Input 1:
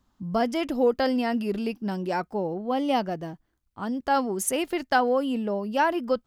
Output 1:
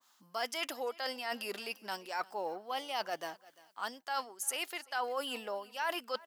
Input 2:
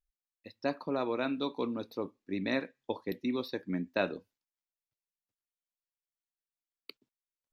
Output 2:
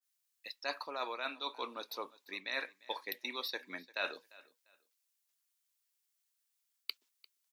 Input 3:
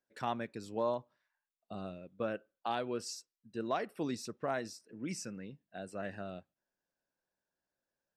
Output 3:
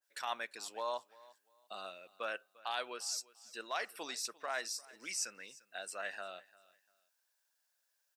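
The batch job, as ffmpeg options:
ffmpeg -i in.wav -af "highpass=960,highshelf=frequency=3200:gain=10,areverse,acompressor=threshold=-38dB:ratio=6,areverse,aecho=1:1:347|694:0.0794|0.0207,adynamicequalizer=threshold=0.00224:dfrequency=1600:dqfactor=0.7:tfrequency=1600:tqfactor=0.7:attack=5:release=100:ratio=0.375:range=2.5:mode=cutabove:tftype=highshelf,volume=5dB" out.wav

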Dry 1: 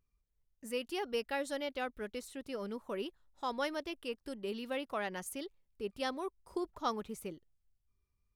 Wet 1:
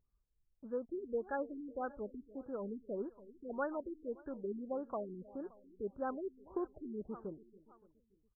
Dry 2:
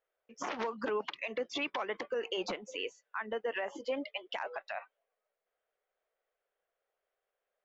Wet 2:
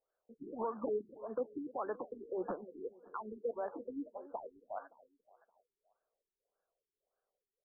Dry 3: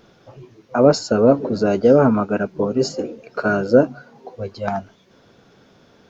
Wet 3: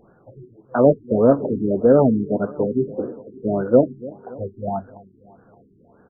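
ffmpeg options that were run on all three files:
ffmpeg -i in.wav -af "aecho=1:1:285|570|855|1140:0.119|0.0618|0.0321|0.0167,acrusher=bits=5:mode=log:mix=0:aa=0.000001,afftfilt=real='re*lt(b*sr/1024,410*pow(1800/410,0.5+0.5*sin(2*PI*1.7*pts/sr)))':imag='im*lt(b*sr/1024,410*pow(1800/410,0.5+0.5*sin(2*PI*1.7*pts/sr)))':win_size=1024:overlap=0.75,volume=-1dB" out.wav

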